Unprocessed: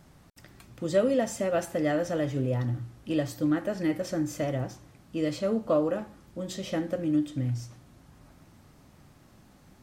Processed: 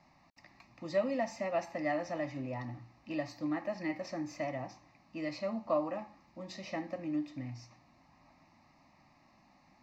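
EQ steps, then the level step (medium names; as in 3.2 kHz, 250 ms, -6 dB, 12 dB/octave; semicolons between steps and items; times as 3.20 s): three-band isolator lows -17 dB, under 240 Hz, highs -23 dB, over 5.1 kHz; static phaser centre 2.2 kHz, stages 8; 0.0 dB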